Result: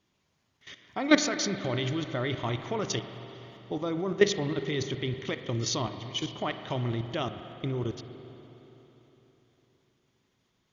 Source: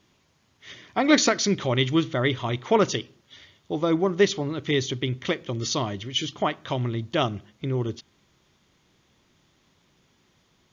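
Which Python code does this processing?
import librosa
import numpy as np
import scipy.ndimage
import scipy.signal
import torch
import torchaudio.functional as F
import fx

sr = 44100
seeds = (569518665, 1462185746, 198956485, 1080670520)

y = fx.level_steps(x, sr, step_db=15)
y = fx.rev_spring(y, sr, rt60_s=3.8, pass_ms=(41, 51), chirp_ms=25, drr_db=8.5)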